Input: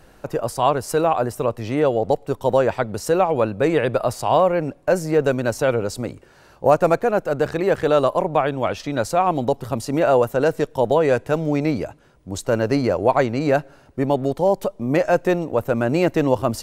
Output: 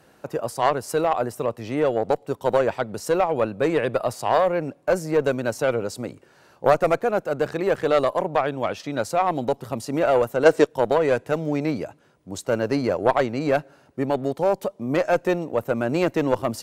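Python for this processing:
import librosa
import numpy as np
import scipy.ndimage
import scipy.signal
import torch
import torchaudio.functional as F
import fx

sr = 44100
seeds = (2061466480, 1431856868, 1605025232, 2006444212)

y = scipy.signal.sosfilt(scipy.signal.butter(2, 120.0, 'highpass', fs=sr, output='sos'), x)
y = fx.cheby_harmonics(y, sr, harmonics=(2, 5, 7, 8), levels_db=(-9, -30, -28, -33), full_scale_db=-2.5)
y = fx.spec_box(y, sr, start_s=10.45, length_s=0.21, low_hz=260.0, high_hz=9600.0, gain_db=8)
y = y * 10.0 ** (-2.5 / 20.0)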